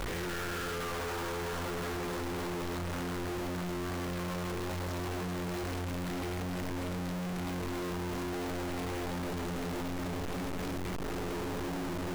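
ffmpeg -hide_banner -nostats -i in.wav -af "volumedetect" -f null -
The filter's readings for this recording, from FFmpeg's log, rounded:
mean_volume: -35.6 dB
max_volume: -35.0 dB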